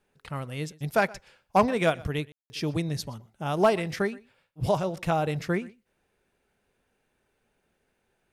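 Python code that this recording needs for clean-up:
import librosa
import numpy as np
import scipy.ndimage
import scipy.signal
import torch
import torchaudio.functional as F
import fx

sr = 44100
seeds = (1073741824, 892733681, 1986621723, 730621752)

y = fx.fix_declip(x, sr, threshold_db=-12.5)
y = fx.fix_ambience(y, sr, seeds[0], print_start_s=5.82, print_end_s=6.32, start_s=2.32, end_s=2.5)
y = fx.fix_echo_inverse(y, sr, delay_ms=123, level_db=-22.5)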